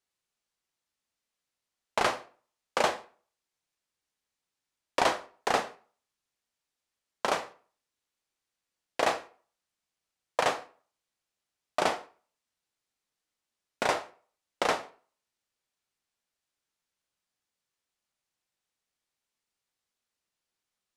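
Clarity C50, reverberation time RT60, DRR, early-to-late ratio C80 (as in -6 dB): 16.0 dB, 0.40 s, 11.0 dB, 21.0 dB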